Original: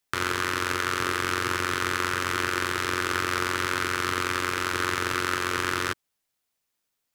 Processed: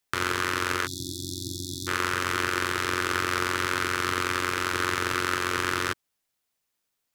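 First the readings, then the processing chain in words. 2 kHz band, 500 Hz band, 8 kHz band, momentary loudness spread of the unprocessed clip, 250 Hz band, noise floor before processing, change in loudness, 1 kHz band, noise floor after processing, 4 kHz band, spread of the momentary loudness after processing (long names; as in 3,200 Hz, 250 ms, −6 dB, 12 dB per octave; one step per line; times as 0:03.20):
−1.0 dB, −1.0 dB, 0.0 dB, 1 LU, −0.5 dB, −80 dBFS, −0.5 dB, −1.0 dB, −80 dBFS, −0.5 dB, 7 LU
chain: time-frequency box erased 0:00.87–0:01.88, 350–3,400 Hz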